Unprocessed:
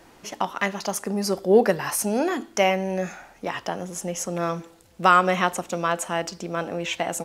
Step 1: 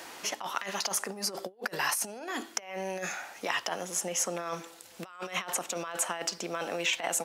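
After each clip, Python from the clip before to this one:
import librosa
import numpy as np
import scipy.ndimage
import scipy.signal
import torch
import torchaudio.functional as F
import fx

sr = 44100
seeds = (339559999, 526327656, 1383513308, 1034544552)

y = fx.over_compress(x, sr, threshold_db=-28.0, ratio=-0.5)
y = fx.highpass(y, sr, hz=940.0, slope=6)
y = fx.band_squash(y, sr, depth_pct=40)
y = F.gain(torch.from_numpy(y), -1.5).numpy()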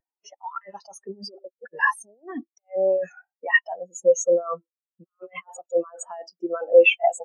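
y = fx.leveller(x, sr, passes=2)
y = fx.spectral_expand(y, sr, expansion=4.0)
y = F.gain(torch.from_numpy(y), 8.0).numpy()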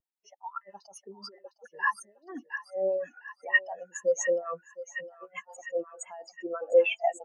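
y = fx.echo_banded(x, sr, ms=709, feedback_pct=65, hz=2500.0, wet_db=-8)
y = fx.harmonic_tremolo(y, sr, hz=7.7, depth_pct=70, crossover_hz=610.0)
y = F.gain(torch.from_numpy(y), -3.5).numpy()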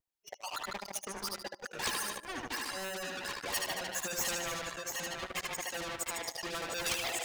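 y = fx.echo_feedback(x, sr, ms=75, feedback_pct=45, wet_db=-7.0)
y = fx.leveller(y, sr, passes=3)
y = fx.spectral_comp(y, sr, ratio=4.0)
y = F.gain(torch.from_numpy(y), -5.5).numpy()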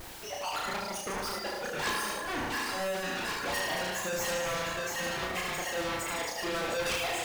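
y = x + 0.5 * 10.0 ** (-33.0 / 20.0) * np.sign(x)
y = fx.high_shelf(y, sr, hz=3800.0, db=-8.5)
y = fx.doubler(y, sr, ms=33.0, db=-2.5)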